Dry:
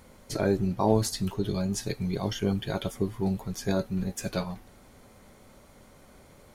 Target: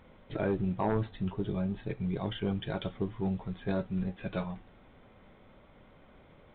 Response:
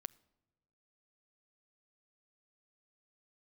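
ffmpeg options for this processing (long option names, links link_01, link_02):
-filter_complex "[0:a]asettb=1/sr,asplit=3[link_01][link_02][link_03];[link_01]atrim=end=0.874[link_04];[link_02]atrim=start=0.87:end=2.16,asetpts=PTS-STARTPTS,afade=type=in:duration=0.004:curve=qsin,afade=type=out:start_time=1.286:duration=0.004:curve=qsin,lowpass=frequency=2400:poles=1[link_05];[link_03]atrim=start=2.156[link_06];[link_04][link_05]acrossfade=duration=0.004:curve1=hsin:curve2=qsin[link_07];[link_07][link_06]acrossfade=duration=0.004:curve1=qsin:curve2=hsin,aeval=exprs='0.335*sin(PI/2*1.78*val(0)/0.335)':channel_layout=same[link_08];[1:a]atrim=start_sample=2205,atrim=end_sample=3087,asetrate=48510,aresample=44100[link_09];[link_08][link_09]afir=irnorm=-1:irlink=0,volume=-7dB" -ar 8000 -c:a pcm_mulaw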